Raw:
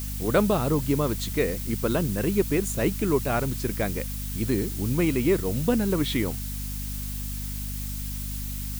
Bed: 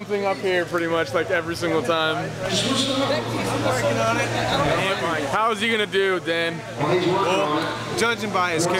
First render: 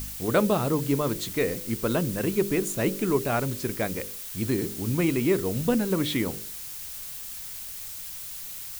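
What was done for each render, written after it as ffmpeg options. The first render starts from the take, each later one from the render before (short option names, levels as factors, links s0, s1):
-af "bandreject=f=50:t=h:w=4,bandreject=f=100:t=h:w=4,bandreject=f=150:t=h:w=4,bandreject=f=200:t=h:w=4,bandreject=f=250:t=h:w=4,bandreject=f=300:t=h:w=4,bandreject=f=350:t=h:w=4,bandreject=f=400:t=h:w=4,bandreject=f=450:t=h:w=4,bandreject=f=500:t=h:w=4,bandreject=f=550:t=h:w=4"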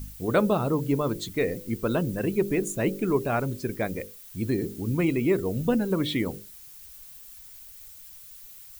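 -af "afftdn=nr=12:nf=-38"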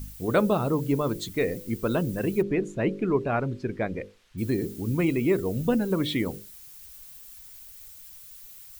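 -filter_complex "[0:a]asplit=3[s0][s1][s2];[s0]afade=t=out:st=2.41:d=0.02[s3];[s1]lowpass=3100,afade=t=in:st=2.41:d=0.02,afade=t=out:st=4.37:d=0.02[s4];[s2]afade=t=in:st=4.37:d=0.02[s5];[s3][s4][s5]amix=inputs=3:normalize=0"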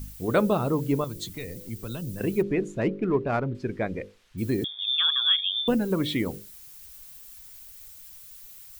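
-filter_complex "[0:a]asettb=1/sr,asplit=3[s0][s1][s2];[s0]atrim=end=1.044[s3];[s1]atrim=start=1.04:end=2.21,asetpts=PTS-STARTPTS,afade=t=in:d=0.004:c=qsin,afade=t=out:st=1.166:d=0.004:c=qsin,acrossover=split=140|3000[s4][s5][s6];[s5]acompressor=threshold=0.00891:ratio=3:attack=3.2:release=140:knee=2.83:detection=peak[s7];[s4][s7][s6]amix=inputs=3:normalize=0[s8];[s2]atrim=start=2.206[s9];[s3][s8]acrossfade=d=0.004:c1=hsin:c2=qsin[s10];[s10][s9]acrossfade=d=0.004:c1=qsin:c2=hsin,asettb=1/sr,asplit=3[s11][s12][s13];[s11]atrim=end=2.814[s14];[s12]atrim=start=2.81:end=3.55,asetpts=PTS-STARTPTS,afade=t=in:d=0.004:c=qsin,afade=t=out:st=0.736:d=0.004:c=qsin,adynamicsmooth=sensitivity=3.5:basefreq=2500[s15];[s13]atrim=start=3.546[s16];[s14][s15]acrossfade=d=0.004:c1=hsin:c2=qsin[s17];[s17][s16]acrossfade=d=0.004:c1=qsin:c2=hsin,asettb=1/sr,asplit=3[s18][s19][s20];[s18]atrim=end=4.644[s21];[s19]atrim=start=4.64:end=5.68,asetpts=PTS-STARTPTS,afade=t=in:d=0.004:c=qsin,afade=t=out:st=1.036:d=0.004:c=qsin,lowpass=f=3100:t=q:w=0.5098,lowpass=f=3100:t=q:w=0.6013,lowpass=f=3100:t=q:w=0.9,lowpass=f=3100:t=q:w=2.563,afreqshift=-3700[s22];[s20]atrim=start=5.676[s23];[s21][s22]acrossfade=d=0.004:c1=hsin:c2=qsin[s24];[s24][s23]acrossfade=d=0.004:c1=qsin:c2=hsin"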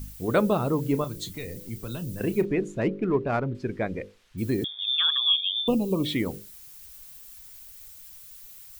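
-filter_complex "[0:a]asettb=1/sr,asplit=3[s0][s1][s2];[s0]atrim=end=0.824[s3];[s1]atrim=start=0.82:end=2.47,asetpts=PTS-STARTPTS,afade=t=in:d=0.004:c=qsin,afade=t=out:st=1.646:d=0.004:c=qsin,asplit=2[s4][s5];[s5]adelay=33,volume=0.224[s6];[s4][s6]amix=inputs=2:normalize=0,atrim=end_sample=72765[s7];[s2]atrim=start=2.466[s8];[s3][s7]acrossfade=d=0.004:c1=hsin:c2=qsin[s9];[s9][s8]acrossfade=d=0.004:c1=qsin:c2=hsin,asettb=1/sr,asplit=3[s10][s11][s12];[s10]atrim=end=5.174[s13];[s11]atrim=start=5.17:end=6.05,asetpts=PTS-STARTPTS,afade=t=in:d=0.004:c=qsin,afade=t=out:st=0.876:d=0.004:c=qsin,asuperstop=centerf=1700:order=20:qfactor=1.5[s14];[s12]atrim=start=6.046[s15];[s13][s14]acrossfade=d=0.004:c1=hsin:c2=qsin[s16];[s16][s15]acrossfade=d=0.004:c1=qsin:c2=hsin"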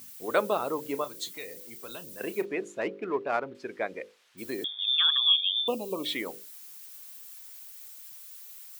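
-af "highpass=510"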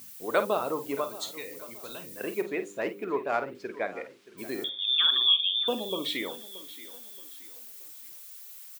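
-filter_complex "[0:a]asplit=2[s0][s1];[s1]adelay=50,volume=0.282[s2];[s0][s2]amix=inputs=2:normalize=0,aecho=1:1:626|1252|1878:0.133|0.0507|0.0193"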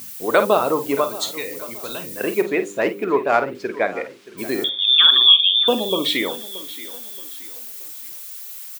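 -af "volume=3.55,alimiter=limit=0.794:level=0:latency=1"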